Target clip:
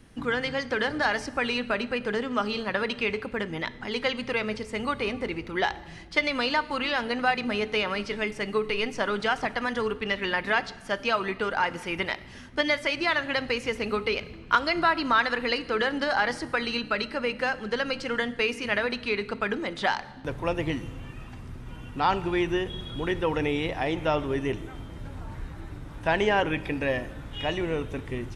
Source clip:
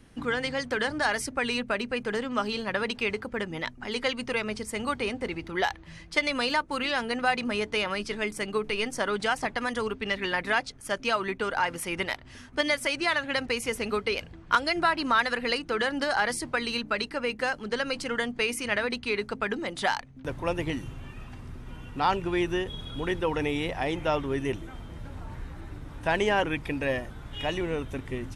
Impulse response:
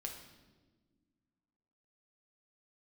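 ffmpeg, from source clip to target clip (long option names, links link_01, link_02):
-filter_complex "[0:a]asplit=2[link_01][link_02];[1:a]atrim=start_sample=2205,asetrate=37485,aresample=44100[link_03];[link_02][link_03]afir=irnorm=-1:irlink=0,volume=-7.5dB[link_04];[link_01][link_04]amix=inputs=2:normalize=0,acrossover=split=5900[link_05][link_06];[link_06]acompressor=threshold=-59dB:ratio=4:attack=1:release=60[link_07];[link_05][link_07]amix=inputs=2:normalize=0,volume=-1dB"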